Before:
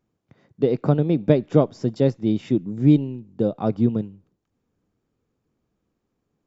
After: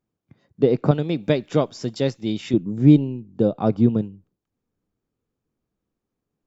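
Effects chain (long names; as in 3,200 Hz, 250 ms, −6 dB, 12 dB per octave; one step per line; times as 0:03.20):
0:00.91–0:02.54: tilt shelving filter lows −7 dB, about 1,300 Hz
noise reduction from a noise print of the clip's start 9 dB
level +2.5 dB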